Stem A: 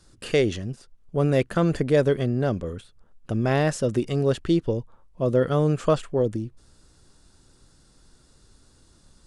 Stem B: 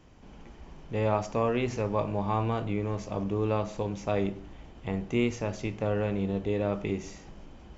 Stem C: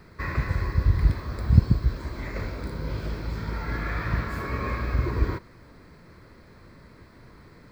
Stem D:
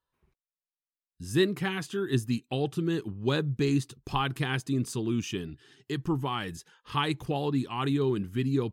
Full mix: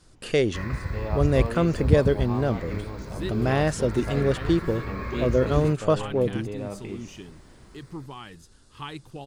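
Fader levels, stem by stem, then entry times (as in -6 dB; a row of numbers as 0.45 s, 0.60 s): -1.0 dB, -6.0 dB, -4.5 dB, -9.0 dB; 0.00 s, 0.00 s, 0.35 s, 1.85 s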